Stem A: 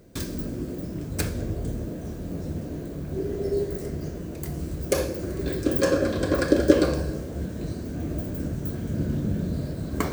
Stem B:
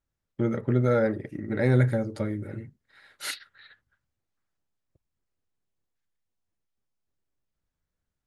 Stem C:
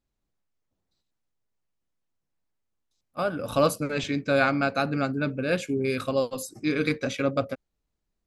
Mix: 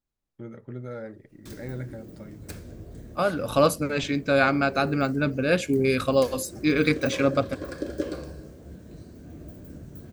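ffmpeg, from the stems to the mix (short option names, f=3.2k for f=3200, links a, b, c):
-filter_complex "[0:a]adelay=1300,volume=-12.5dB[a];[1:a]volume=-14dB[b];[2:a]dynaudnorm=f=280:g=7:m=15dB,volume=-5.5dB[c];[a][b][c]amix=inputs=3:normalize=0"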